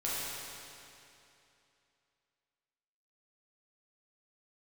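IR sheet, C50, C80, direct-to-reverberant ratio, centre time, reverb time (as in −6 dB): −4.0 dB, −2.0 dB, −8.5 dB, 190 ms, 2.8 s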